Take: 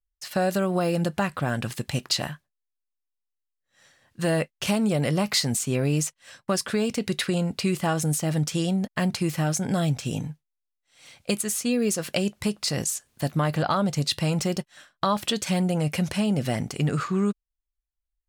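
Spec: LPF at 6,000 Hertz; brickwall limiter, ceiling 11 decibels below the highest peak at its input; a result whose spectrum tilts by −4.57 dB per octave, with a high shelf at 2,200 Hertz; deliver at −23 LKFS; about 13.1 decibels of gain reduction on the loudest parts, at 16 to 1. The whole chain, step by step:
low-pass filter 6,000 Hz
high-shelf EQ 2,200 Hz +3.5 dB
downward compressor 16 to 1, threshold −32 dBFS
level +15 dB
brickwall limiter −12.5 dBFS

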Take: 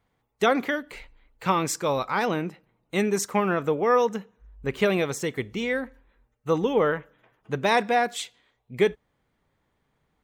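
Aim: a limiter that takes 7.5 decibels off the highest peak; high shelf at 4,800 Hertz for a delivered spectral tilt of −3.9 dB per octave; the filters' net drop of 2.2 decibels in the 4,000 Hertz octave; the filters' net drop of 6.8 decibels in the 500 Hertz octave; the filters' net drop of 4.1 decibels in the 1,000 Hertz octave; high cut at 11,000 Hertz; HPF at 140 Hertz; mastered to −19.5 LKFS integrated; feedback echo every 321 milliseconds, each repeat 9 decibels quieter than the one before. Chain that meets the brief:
high-pass filter 140 Hz
low-pass filter 11,000 Hz
parametric band 500 Hz −7.5 dB
parametric band 1,000 Hz −3 dB
parametric band 4,000 Hz −6.5 dB
high-shelf EQ 4,800 Hz +8.5 dB
brickwall limiter −19.5 dBFS
repeating echo 321 ms, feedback 35%, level −9 dB
level +12 dB

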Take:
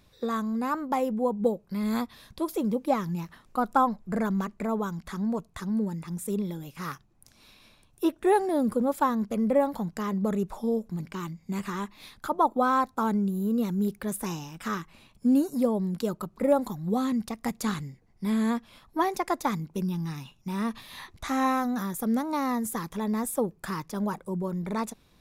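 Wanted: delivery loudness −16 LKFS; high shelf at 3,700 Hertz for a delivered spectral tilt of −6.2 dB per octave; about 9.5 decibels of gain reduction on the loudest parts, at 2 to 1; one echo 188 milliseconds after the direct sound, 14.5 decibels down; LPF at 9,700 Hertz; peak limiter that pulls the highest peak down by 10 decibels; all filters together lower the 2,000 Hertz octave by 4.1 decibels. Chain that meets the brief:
low-pass filter 9,700 Hz
parametric band 2,000 Hz −3.5 dB
high-shelf EQ 3,700 Hz −8.5 dB
downward compressor 2 to 1, threshold −36 dBFS
brickwall limiter −31 dBFS
single-tap delay 188 ms −14.5 dB
level +23 dB

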